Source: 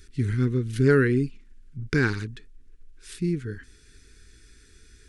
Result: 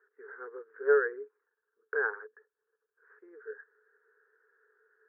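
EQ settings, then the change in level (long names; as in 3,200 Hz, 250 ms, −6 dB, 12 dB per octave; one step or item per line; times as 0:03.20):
Chebyshev band-pass filter 430–1,700 Hz, order 5
high-frequency loss of the air 350 metres
0.0 dB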